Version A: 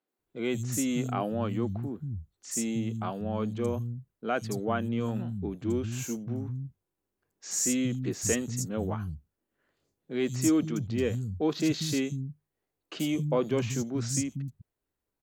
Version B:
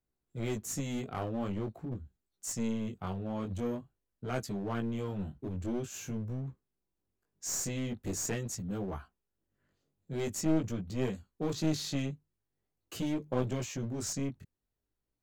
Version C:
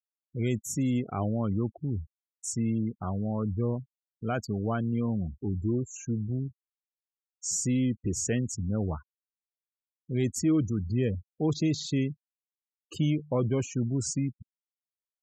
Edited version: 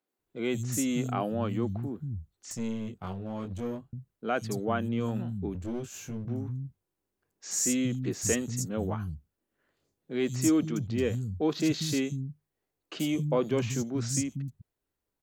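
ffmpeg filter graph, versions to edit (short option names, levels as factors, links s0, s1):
-filter_complex "[1:a]asplit=2[s0][s1];[0:a]asplit=3[s2][s3][s4];[s2]atrim=end=2.512[s5];[s0]atrim=start=2.508:end=3.932[s6];[s3]atrim=start=3.928:end=5.552[s7];[s1]atrim=start=5.548:end=6.252[s8];[s4]atrim=start=6.248[s9];[s5][s6]acrossfade=d=0.004:c1=hsin:c2=hsin[s10];[s10][s7]acrossfade=d=0.004:c1=hsin:c2=hsin[s11];[s11][s8]acrossfade=d=0.004:c1=hsin:c2=hsin[s12];[s12][s9]acrossfade=d=0.004:c1=hsin:c2=hsin"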